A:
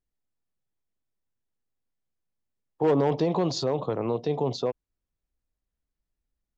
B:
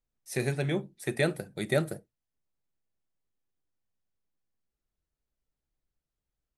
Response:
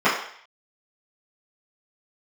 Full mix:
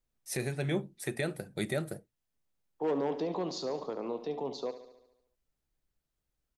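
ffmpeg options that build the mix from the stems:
-filter_complex "[0:a]highpass=f=190:w=0.5412,highpass=f=190:w=1.3066,volume=-8.5dB,asplit=2[a][b];[b]volume=-12.5dB[c];[1:a]volume=2.5dB[d];[c]aecho=0:1:71|142|213|284|355|426|497|568|639:1|0.59|0.348|0.205|0.121|0.0715|0.0422|0.0249|0.0147[e];[a][d][e]amix=inputs=3:normalize=0,alimiter=limit=-19.5dB:level=0:latency=1:release=457"

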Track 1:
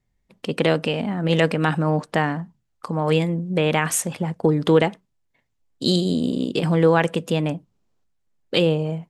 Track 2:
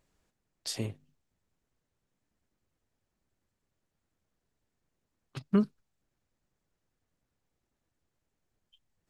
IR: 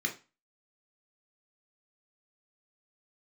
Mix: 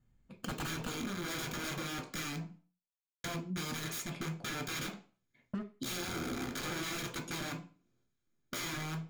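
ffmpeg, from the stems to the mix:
-filter_complex "[0:a]aeval=exprs='(mod(9.44*val(0)+1,2)-1)/9.44':c=same,bandreject=f=1.9k:w=7,volume=-3dB,asplit=3[a][b][c];[a]atrim=end=2.59,asetpts=PTS-STARTPTS,afade=t=out:st=2.586:d=0.004:c=hsin[d];[b]atrim=start=2.59:end=3.24,asetpts=PTS-STARTPTS,volume=0[e];[c]atrim=start=3.24,asetpts=PTS-STARTPTS,afade=t=in:d=0.004:c=hsin[f];[d][e][f]concat=n=3:v=0:a=1,asplit=2[g][h];[h]volume=-3.5dB[i];[1:a]acrusher=bits=3:mix=0:aa=0.5,volume=-6dB,asplit=3[j][k][l];[k]volume=-7dB[m];[l]apad=whole_len=400971[n];[g][n]sidechaingate=range=-33dB:threshold=-51dB:ratio=16:detection=peak[o];[2:a]atrim=start_sample=2205[p];[i][m]amix=inputs=2:normalize=0[q];[q][p]afir=irnorm=-1:irlink=0[r];[o][j][r]amix=inputs=3:normalize=0,acompressor=threshold=-45dB:ratio=2"

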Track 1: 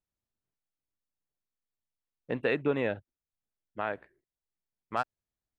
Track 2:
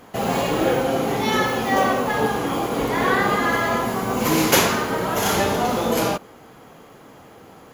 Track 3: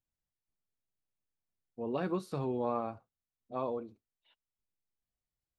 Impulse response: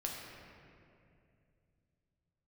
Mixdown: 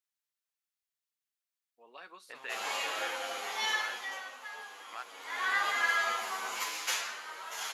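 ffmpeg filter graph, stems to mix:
-filter_complex "[0:a]alimiter=level_in=1.5dB:limit=-24dB:level=0:latency=1,volume=-1.5dB,volume=2dB[a];[1:a]lowpass=9k,asplit=2[b][c];[c]adelay=9.8,afreqshift=-0.83[d];[b][d]amix=inputs=2:normalize=1,adelay=2350,volume=10dB,afade=t=out:st=3.61:d=0.61:silence=0.281838,afade=t=in:st=5.17:d=0.54:silence=0.251189,afade=t=out:st=6.52:d=0.2:silence=0.375837[e];[2:a]volume=-3dB[f];[a][e][f]amix=inputs=3:normalize=0,highpass=1.4k"

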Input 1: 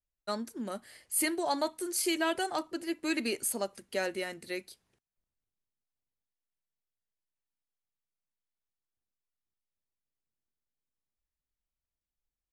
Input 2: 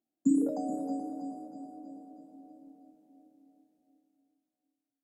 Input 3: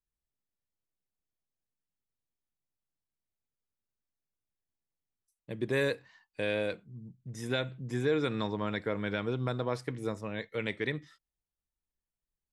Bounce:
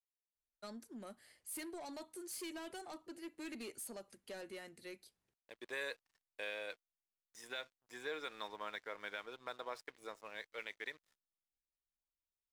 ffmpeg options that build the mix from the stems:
-filter_complex "[0:a]asoftclip=type=tanh:threshold=-30.5dB,acrossover=split=470|3000[a][b][c];[b]acompressor=threshold=-37dB:ratio=6[d];[a][d][c]amix=inputs=3:normalize=0,adelay=350,volume=-11dB[e];[2:a]highpass=730,alimiter=level_in=1.5dB:limit=-24dB:level=0:latency=1:release=287,volume=-1.5dB,aeval=exprs='sgn(val(0))*max(abs(val(0))-0.0015,0)':c=same,volume=-5dB[f];[e][f]amix=inputs=2:normalize=0"

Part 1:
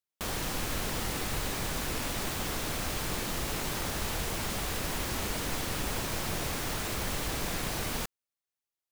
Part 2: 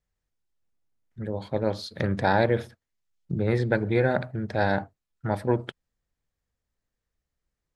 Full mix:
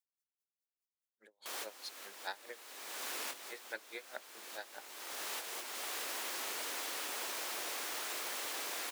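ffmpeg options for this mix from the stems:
-filter_complex "[0:a]adelay=1250,volume=-4dB[a];[1:a]bandreject=f=60:t=h:w=6,bandreject=f=120:t=h:w=6,bandreject=f=180:t=h:w=6,bandreject=f=240:t=h:w=6,bandreject=f=300:t=h:w=6,bandreject=f=360:t=h:w=6,crystalizer=i=6:c=0,aeval=exprs='val(0)*pow(10,-34*(0.5-0.5*cos(2*PI*4.8*n/s))/20)':c=same,volume=-16.5dB,asplit=2[b][c];[c]apad=whole_len=448346[d];[a][d]sidechaincompress=threshold=-54dB:ratio=12:attack=35:release=491[e];[e][b]amix=inputs=2:normalize=0,highpass=f=310:w=0.5412,highpass=f=310:w=1.3066,lowshelf=f=480:g=-11"

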